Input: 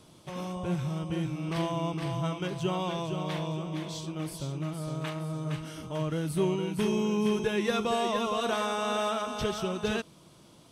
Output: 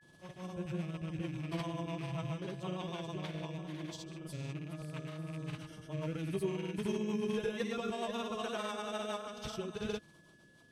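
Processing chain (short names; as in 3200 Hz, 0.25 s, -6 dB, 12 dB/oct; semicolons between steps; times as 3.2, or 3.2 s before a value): rattling part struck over -33 dBFS, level -34 dBFS; rotary speaker horn 7.5 Hz; grains 0.1 s, grains 20/s, pitch spread up and down by 0 st; whine 1700 Hz -59 dBFS; gain -5 dB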